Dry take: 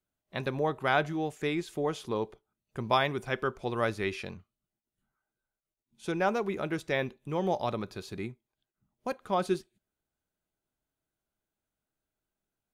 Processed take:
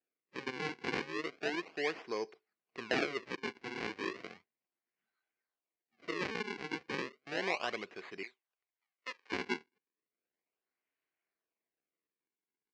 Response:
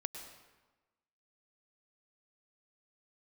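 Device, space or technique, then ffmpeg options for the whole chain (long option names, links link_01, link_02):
circuit-bent sampling toy: -filter_complex "[0:a]acrusher=samples=40:mix=1:aa=0.000001:lfo=1:lforange=64:lforate=0.34,highpass=510,equalizer=frequency=580:width_type=q:width=4:gain=-8,equalizer=frequency=880:width_type=q:width=4:gain=-9,equalizer=frequency=1300:width_type=q:width=4:gain=-7,equalizer=frequency=2200:width_type=q:width=4:gain=4,equalizer=frequency=3500:width_type=q:width=4:gain=-8,lowpass=frequency=4600:width=0.5412,lowpass=frequency=4600:width=1.3066,asettb=1/sr,asplit=3[link_01][link_02][link_03];[link_01]atrim=end=8.234[link_04];[link_02]atrim=start=8.23:end=9.32,asetpts=PTS-STARTPTS,afade=type=in:duration=0.004:curve=qsin,afade=type=out:start_time=1.086:duration=0.004:curve=qsin,highpass=770[link_05];[link_03]atrim=start=9.316[link_06];[link_04][link_05]acrossfade=duration=0.004:curve1=hsin:curve2=qsin[link_07];[link_07][link_06]acrossfade=duration=0.004:curve1=qsin:curve2=hsin,volume=1.5dB"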